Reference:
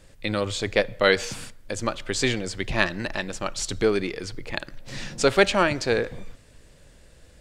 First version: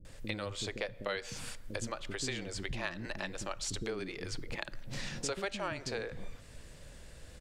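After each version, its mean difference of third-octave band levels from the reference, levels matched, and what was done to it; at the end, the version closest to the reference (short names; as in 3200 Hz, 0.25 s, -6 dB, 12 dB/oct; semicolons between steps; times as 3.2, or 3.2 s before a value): 7.0 dB: compressor 4:1, threshold -37 dBFS, peak gain reduction 20.5 dB; bands offset in time lows, highs 50 ms, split 350 Hz; gain +1 dB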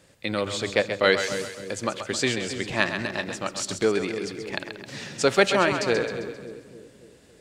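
4.0 dB: HPF 120 Hz 12 dB/oct; split-band echo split 440 Hz, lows 0.281 s, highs 0.132 s, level -8 dB; gain -1 dB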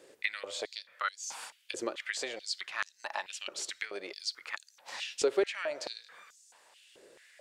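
12.0 dB: compressor 6:1, threshold -30 dBFS, peak gain reduction 17 dB; stepped high-pass 4.6 Hz 390–6400 Hz; gain -4 dB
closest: second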